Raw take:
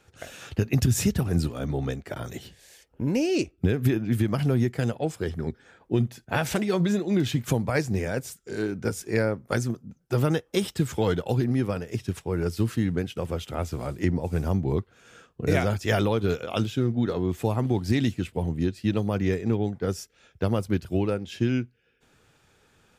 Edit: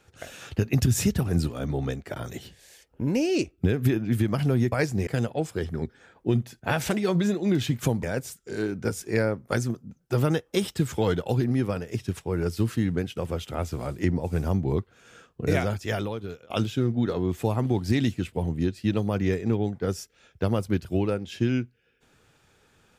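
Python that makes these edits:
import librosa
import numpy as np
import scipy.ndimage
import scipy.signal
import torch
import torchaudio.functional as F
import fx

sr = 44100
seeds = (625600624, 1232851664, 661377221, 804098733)

y = fx.edit(x, sr, fx.move(start_s=7.68, length_s=0.35, to_s=4.72),
    fx.fade_out_to(start_s=15.42, length_s=1.08, floor_db=-21.5), tone=tone)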